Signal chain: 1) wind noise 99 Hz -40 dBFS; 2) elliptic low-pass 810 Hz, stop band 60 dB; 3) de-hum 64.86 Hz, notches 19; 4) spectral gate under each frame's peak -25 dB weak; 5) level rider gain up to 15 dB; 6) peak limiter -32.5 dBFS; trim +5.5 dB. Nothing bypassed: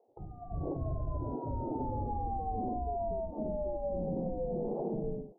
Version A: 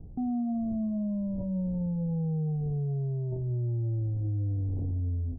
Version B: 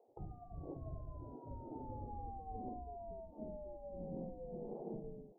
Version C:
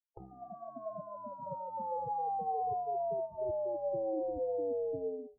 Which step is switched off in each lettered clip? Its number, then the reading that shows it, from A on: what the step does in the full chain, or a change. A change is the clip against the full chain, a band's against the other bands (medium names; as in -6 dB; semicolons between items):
4, crest factor change -5.5 dB; 5, crest factor change +5.5 dB; 1, 125 Hz band -18.0 dB